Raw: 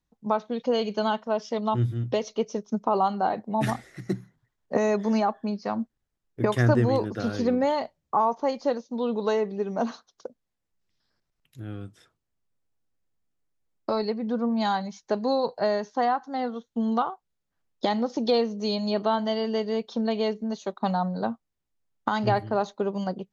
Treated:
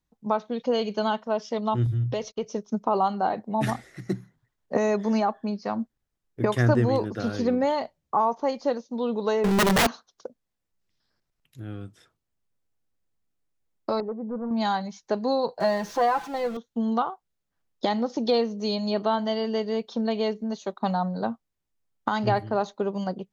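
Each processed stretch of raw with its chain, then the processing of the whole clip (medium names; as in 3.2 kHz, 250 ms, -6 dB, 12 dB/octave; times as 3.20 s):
1.86–2.47 s: gate -46 dBFS, range -29 dB + resonant low shelf 160 Hz +7 dB, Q 1.5 + compression 2.5:1, threshold -24 dBFS
9.44–9.87 s: bass shelf 120 Hz +4.5 dB + power-law waveshaper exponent 0.35 + integer overflow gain 17 dB
14.00–14.51 s: overload inside the chain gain 24 dB + low-pass 1.1 kHz 24 dB/octave + bass shelf 240 Hz -6.5 dB
15.60–16.57 s: jump at every zero crossing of -36.5 dBFS + treble shelf 6 kHz -7 dB + comb 5.9 ms, depth 76%
whole clip: none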